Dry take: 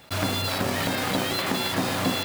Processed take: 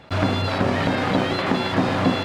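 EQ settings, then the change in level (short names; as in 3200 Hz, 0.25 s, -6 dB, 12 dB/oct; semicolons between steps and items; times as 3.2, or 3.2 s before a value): tape spacing loss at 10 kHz 20 dB; high shelf 5600 Hz -4.5 dB; +7.0 dB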